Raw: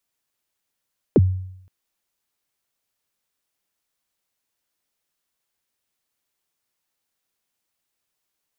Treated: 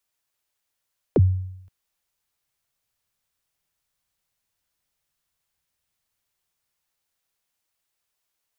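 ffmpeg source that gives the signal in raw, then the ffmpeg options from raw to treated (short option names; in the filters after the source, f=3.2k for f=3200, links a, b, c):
-f lavfi -i "aevalsrc='0.398*pow(10,-3*t/0.74)*sin(2*PI*(510*0.036/log(93/510)*(exp(log(93/510)*min(t,0.036)/0.036)-1)+93*max(t-0.036,0)))':d=0.52:s=44100"
-filter_complex "[0:a]acrossover=split=170|460[a][b][c];[a]dynaudnorm=f=200:g=21:m=9dB[d];[b]aemphasis=mode=production:type=riaa[e];[d][e][c]amix=inputs=3:normalize=0"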